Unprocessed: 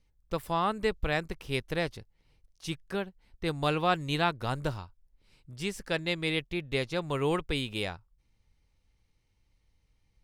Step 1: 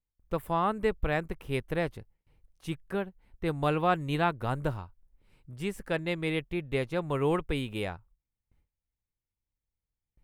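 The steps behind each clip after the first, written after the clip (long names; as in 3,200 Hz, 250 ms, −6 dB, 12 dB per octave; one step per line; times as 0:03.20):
noise gate with hold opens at −57 dBFS
parametric band 5,100 Hz −14 dB 1.4 octaves
level +1.5 dB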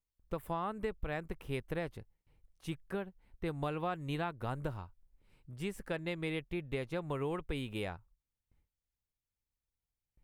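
downward compressor, threshold −29 dBFS, peak gain reduction 9 dB
level −3.5 dB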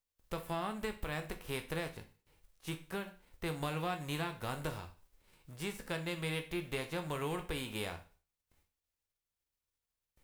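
spectral envelope flattened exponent 0.6
convolution reverb RT60 0.40 s, pre-delay 12 ms, DRR 5.5 dB
level −2 dB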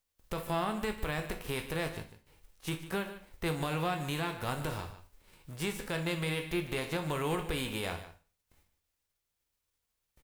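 brickwall limiter −27.5 dBFS, peak gain reduction 6 dB
single-tap delay 149 ms −13.5 dB
level +6 dB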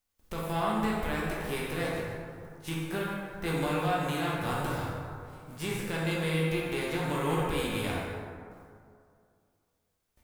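dense smooth reverb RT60 2.3 s, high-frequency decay 0.4×, DRR −4 dB
level −2 dB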